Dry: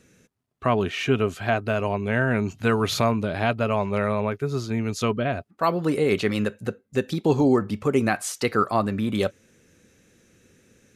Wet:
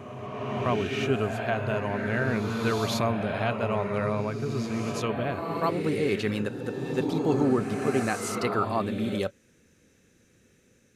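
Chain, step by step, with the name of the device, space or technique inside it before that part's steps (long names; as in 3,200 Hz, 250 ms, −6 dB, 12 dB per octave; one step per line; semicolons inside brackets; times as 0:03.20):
reverse reverb (reversed playback; convolution reverb RT60 2.8 s, pre-delay 65 ms, DRR 3 dB; reversed playback)
level −5.5 dB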